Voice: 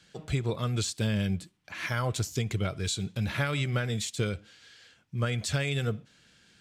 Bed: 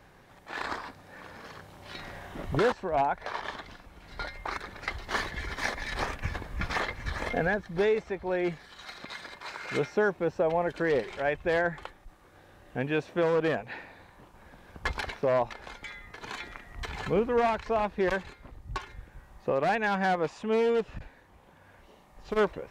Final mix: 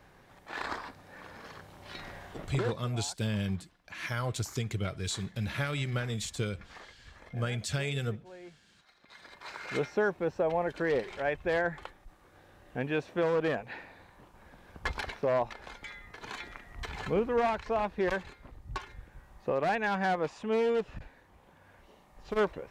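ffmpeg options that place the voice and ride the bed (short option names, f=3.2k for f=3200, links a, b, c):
-filter_complex "[0:a]adelay=2200,volume=-3.5dB[a];[1:a]volume=15.5dB,afade=t=out:st=2.08:d=0.85:silence=0.125893,afade=t=in:st=9.03:d=0.54:silence=0.133352[b];[a][b]amix=inputs=2:normalize=0"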